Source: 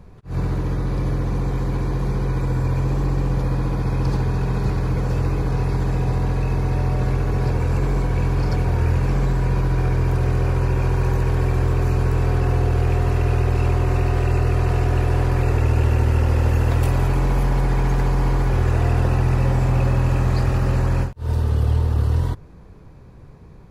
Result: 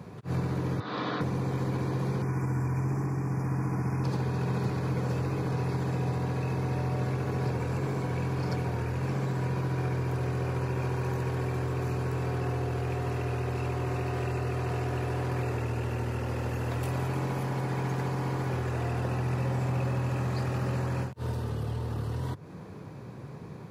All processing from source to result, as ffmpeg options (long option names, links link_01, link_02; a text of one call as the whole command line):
ffmpeg -i in.wav -filter_complex "[0:a]asettb=1/sr,asplit=3[link_01][link_02][link_03];[link_01]atrim=end=0.804[link_04];[link_02]atrim=start=0.8:end=1.21,asetpts=PTS-STARTPTS,afade=type=in:duration=0.004:curve=qsin,afade=type=out:start_time=0.406:duration=0.004:curve=qsin,highpass=370,equalizer=frequency=370:width_type=q:width=4:gain=-9,equalizer=frequency=540:width_type=q:width=4:gain=-7,equalizer=frequency=850:width_type=q:width=4:gain=-4,equalizer=frequency=1300:width_type=q:width=4:gain=4,equalizer=frequency=2300:width_type=q:width=4:gain=-5,equalizer=frequency=3600:width_type=q:width=4:gain=8,lowpass=frequency=4400:width=0.5412,lowpass=frequency=4400:width=1.3066,asplit=2[link_05][link_06];[link_06]adelay=19,volume=-11.5dB[link_07];[link_05][link_07]amix=inputs=2:normalize=0,atrim=end_sample=18081[link_08];[link_03]atrim=start=1.206[link_09];[link_04][link_08]acrossfade=duration=0.004:curve1=hsin:curve2=qsin[link_10];[link_10][link_09]acrossfade=duration=0.004:curve1=qsin:curve2=hsin,asettb=1/sr,asplit=3[link_11][link_12][link_13];[link_11]atrim=end=2.224[link_14];[link_12]atrim=start=2.22:end=4.04,asetpts=PTS-STARTPTS,afade=type=in:duration=0.004:curve=qsin,afade=type=out:start_time=1.816:duration=0.004:curve=qsin,asuperstop=centerf=3500:order=8:qfactor=1.3,equalizer=frequency=530:width=6.4:gain=-15[link_15];[link_13]atrim=start=4.036[link_16];[link_14][link_15]acrossfade=duration=0.004:curve1=hsin:curve2=qsin[link_17];[link_17][link_16]acrossfade=duration=0.004:curve1=qsin:curve2=hsin,acompressor=threshold=-28dB:ratio=6,highpass=frequency=110:width=0.5412,highpass=frequency=110:width=1.3066,volume=4.5dB" out.wav